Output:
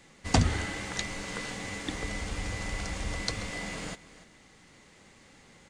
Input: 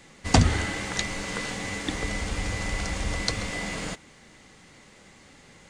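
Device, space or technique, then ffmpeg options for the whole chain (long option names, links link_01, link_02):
ducked delay: -filter_complex "[0:a]asplit=3[link_01][link_02][link_03];[link_02]adelay=290,volume=-6dB[link_04];[link_03]apad=whole_len=264063[link_05];[link_04][link_05]sidechaincompress=threshold=-44dB:ratio=5:attack=38:release=991[link_06];[link_01][link_06]amix=inputs=2:normalize=0,volume=-5dB"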